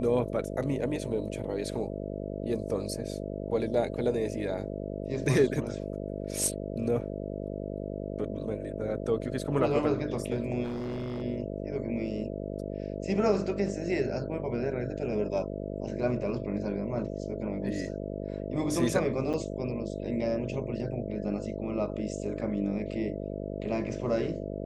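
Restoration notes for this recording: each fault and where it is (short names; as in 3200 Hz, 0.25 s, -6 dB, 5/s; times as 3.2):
buzz 50 Hz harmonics 13 -36 dBFS
10.63–11.23 clipped -31 dBFS
19.33–19.34 gap 7.1 ms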